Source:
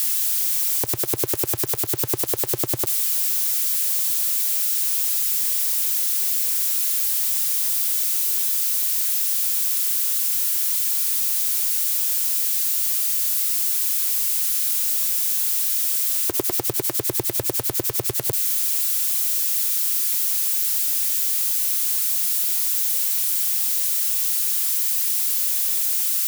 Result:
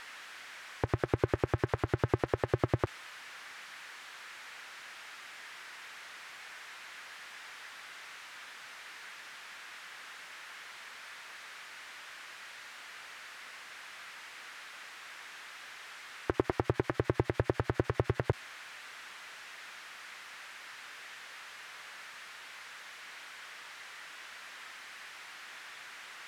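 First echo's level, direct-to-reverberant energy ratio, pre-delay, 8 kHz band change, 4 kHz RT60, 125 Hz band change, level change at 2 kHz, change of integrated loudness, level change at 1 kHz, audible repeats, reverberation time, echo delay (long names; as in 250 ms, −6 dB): no echo audible, no reverb audible, no reverb audible, −32.0 dB, no reverb audible, +1.0 dB, −3.0 dB, −21.5 dB, −1.5 dB, no echo audible, no reverb audible, no echo audible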